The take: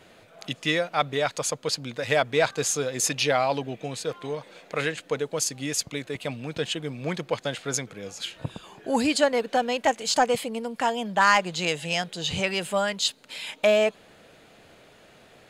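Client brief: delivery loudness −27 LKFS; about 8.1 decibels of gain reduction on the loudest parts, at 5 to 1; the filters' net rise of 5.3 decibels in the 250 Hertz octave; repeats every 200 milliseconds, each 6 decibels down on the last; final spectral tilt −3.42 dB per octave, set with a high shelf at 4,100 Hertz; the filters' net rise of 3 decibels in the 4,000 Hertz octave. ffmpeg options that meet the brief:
ffmpeg -i in.wav -af "equalizer=frequency=250:width_type=o:gain=6.5,equalizer=frequency=4000:width_type=o:gain=6,highshelf=frequency=4100:gain=-4,acompressor=threshold=-24dB:ratio=5,aecho=1:1:200|400|600|800|1000|1200:0.501|0.251|0.125|0.0626|0.0313|0.0157,volume=1dB" out.wav

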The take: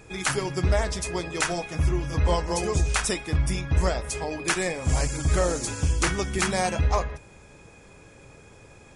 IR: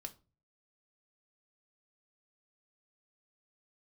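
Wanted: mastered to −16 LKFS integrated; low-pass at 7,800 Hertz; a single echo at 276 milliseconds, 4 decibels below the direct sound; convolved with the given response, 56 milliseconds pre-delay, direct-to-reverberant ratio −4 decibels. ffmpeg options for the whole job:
-filter_complex "[0:a]lowpass=7800,aecho=1:1:276:0.631,asplit=2[link_01][link_02];[1:a]atrim=start_sample=2205,adelay=56[link_03];[link_02][link_03]afir=irnorm=-1:irlink=0,volume=8.5dB[link_04];[link_01][link_04]amix=inputs=2:normalize=0,volume=2.5dB"

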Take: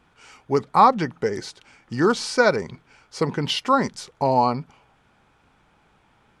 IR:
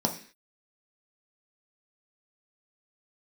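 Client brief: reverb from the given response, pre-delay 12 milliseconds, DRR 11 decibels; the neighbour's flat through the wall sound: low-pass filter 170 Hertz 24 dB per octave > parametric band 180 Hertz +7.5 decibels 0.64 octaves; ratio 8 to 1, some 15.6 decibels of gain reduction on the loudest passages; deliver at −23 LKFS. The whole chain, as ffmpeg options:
-filter_complex "[0:a]acompressor=threshold=-26dB:ratio=8,asplit=2[link_01][link_02];[1:a]atrim=start_sample=2205,adelay=12[link_03];[link_02][link_03]afir=irnorm=-1:irlink=0,volume=-20dB[link_04];[link_01][link_04]amix=inputs=2:normalize=0,lowpass=frequency=170:width=0.5412,lowpass=frequency=170:width=1.3066,equalizer=frequency=180:width_type=o:width=0.64:gain=7.5,volume=16dB"

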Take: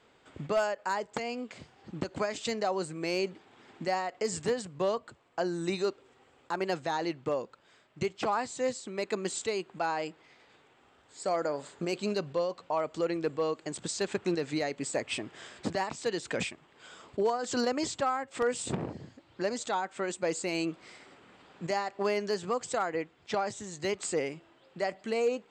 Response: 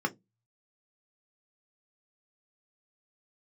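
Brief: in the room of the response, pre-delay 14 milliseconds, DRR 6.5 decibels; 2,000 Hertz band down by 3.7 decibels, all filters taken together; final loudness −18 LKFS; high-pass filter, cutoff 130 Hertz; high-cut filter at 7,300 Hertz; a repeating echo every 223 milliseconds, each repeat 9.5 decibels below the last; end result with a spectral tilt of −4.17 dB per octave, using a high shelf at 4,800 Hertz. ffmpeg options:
-filter_complex "[0:a]highpass=130,lowpass=7300,equalizer=frequency=2000:width_type=o:gain=-5.5,highshelf=frequency=4800:gain=4,aecho=1:1:223|446|669|892:0.335|0.111|0.0365|0.012,asplit=2[link_01][link_02];[1:a]atrim=start_sample=2205,adelay=14[link_03];[link_02][link_03]afir=irnorm=-1:irlink=0,volume=-14dB[link_04];[link_01][link_04]amix=inputs=2:normalize=0,volume=14dB"

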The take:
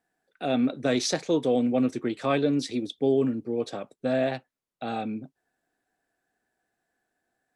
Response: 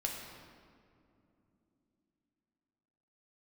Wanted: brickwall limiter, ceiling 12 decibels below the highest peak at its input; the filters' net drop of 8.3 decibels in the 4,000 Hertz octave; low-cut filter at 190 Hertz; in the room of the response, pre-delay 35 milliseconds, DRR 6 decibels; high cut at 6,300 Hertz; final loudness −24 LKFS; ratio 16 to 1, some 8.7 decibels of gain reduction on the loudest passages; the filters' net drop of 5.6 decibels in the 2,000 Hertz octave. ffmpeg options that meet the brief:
-filter_complex "[0:a]highpass=190,lowpass=6300,equalizer=frequency=2000:width_type=o:gain=-5.5,equalizer=frequency=4000:width_type=o:gain=-8,acompressor=threshold=-28dB:ratio=16,alimiter=level_in=6.5dB:limit=-24dB:level=0:latency=1,volume=-6.5dB,asplit=2[link_01][link_02];[1:a]atrim=start_sample=2205,adelay=35[link_03];[link_02][link_03]afir=irnorm=-1:irlink=0,volume=-8dB[link_04];[link_01][link_04]amix=inputs=2:normalize=0,volume=15dB"

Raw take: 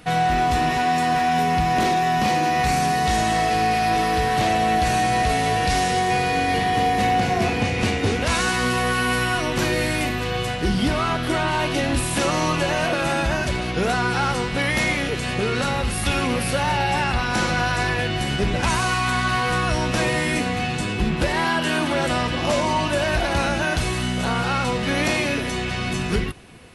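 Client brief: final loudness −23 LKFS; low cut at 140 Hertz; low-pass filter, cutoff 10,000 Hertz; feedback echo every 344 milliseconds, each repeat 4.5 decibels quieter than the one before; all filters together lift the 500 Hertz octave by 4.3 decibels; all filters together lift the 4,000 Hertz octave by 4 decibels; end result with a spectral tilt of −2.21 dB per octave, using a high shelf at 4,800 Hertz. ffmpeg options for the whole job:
ffmpeg -i in.wav -af "highpass=140,lowpass=10000,equalizer=frequency=500:width_type=o:gain=5.5,equalizer=frequency=4000:width_type=o:gain=8,highshelf=frequency=4800:gain=-6,aecho=1:1:344|688|1032|1376|1720|2064|2408|2752|3096:0.596|0.357|0.214|0.129|0.0772|0.0463|0.0278|0.0167|0.01,volume=-7dB" out.wav

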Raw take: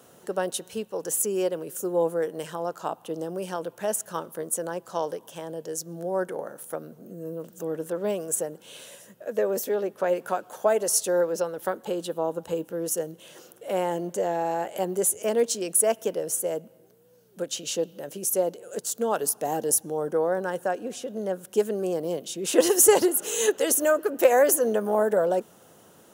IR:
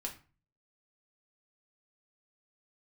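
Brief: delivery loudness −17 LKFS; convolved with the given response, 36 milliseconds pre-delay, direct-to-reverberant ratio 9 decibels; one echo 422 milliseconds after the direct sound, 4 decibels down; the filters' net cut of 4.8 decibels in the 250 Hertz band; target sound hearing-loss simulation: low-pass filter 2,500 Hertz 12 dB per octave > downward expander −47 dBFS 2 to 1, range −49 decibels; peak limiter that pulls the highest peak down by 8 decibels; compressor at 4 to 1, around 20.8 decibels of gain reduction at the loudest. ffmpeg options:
-filter_complex "[0:a]equalizer=frequency=250:width_type=o:gain=-8,acompressor=threshold=-40dB:ratio=4,alimiter=level_in=7dB:limit=-24dB:level=0:latency=1,volume=-7dB,aecho=1:1:422:0.631,asplit=2[link_01][link_02];[1:a]atrim=start_sample=2205,adelay=36[link_03];[link_02][link_03]afir=irnorm=-1:irlink=0,volume=-8.5dB[link_04];[link_01][link_04]amix=inputs=2:normalize=0,lowpass=2500,agate=range=-49dB:threshold=-47dB:ratio=2,volume=24.5dB"

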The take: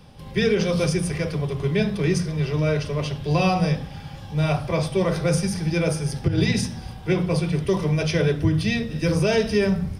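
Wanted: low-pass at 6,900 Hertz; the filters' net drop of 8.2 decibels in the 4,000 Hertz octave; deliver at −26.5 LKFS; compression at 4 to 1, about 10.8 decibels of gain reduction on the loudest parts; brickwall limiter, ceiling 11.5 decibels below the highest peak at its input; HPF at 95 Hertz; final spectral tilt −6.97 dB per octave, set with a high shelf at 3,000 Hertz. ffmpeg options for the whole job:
ffmpeg -i in.wav -af "highpass=95,lowpass=6900,highshelf=frequency=3000:gain=-8,equalizer=frequency=4000:width_type=o:gain=-3.5,acompressor=threshold=-30dB:ratio=4,volume=12dB,alimiter=limit=-18.5dB:level=0:latency=1" out.wav

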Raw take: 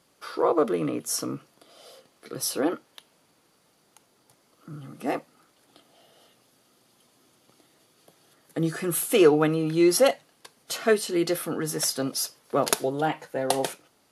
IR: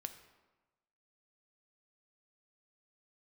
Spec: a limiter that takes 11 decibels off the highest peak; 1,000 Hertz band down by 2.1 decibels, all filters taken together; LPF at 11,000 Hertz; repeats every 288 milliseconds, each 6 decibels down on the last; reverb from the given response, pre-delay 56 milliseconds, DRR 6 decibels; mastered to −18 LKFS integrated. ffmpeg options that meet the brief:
-filter_complex "[0:a]lowpass=11000,equalizer=frequency=1000:width_type=o:gain=-3,alimiter=limit=-16.5dB:level=0:latency=1,aecho=1:1:288|576|864|1152|1440|1728:0.501|0.251|0.125|0.0626|0.0313|0.0157,asplit=2[link_01][link_02];[1:a]atrim=start_sample=2205,adelay=56[link_03];[link_02][link_03]afir=irnorm=-1:irlink=0,volume=-3dB[link_04];[link_01][link_04]amix=inputs=2:normalize=0,volume=9dB"

